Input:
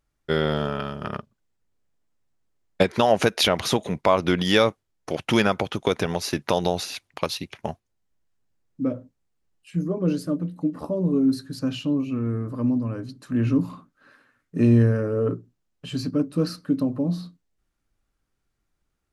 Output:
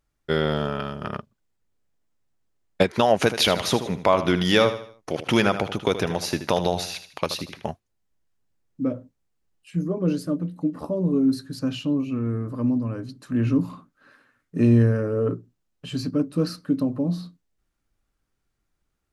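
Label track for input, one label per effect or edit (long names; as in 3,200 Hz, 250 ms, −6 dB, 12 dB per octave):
3.150000	7.650000	repeating echo 78 ms, feedback 38%, level −11.5 dB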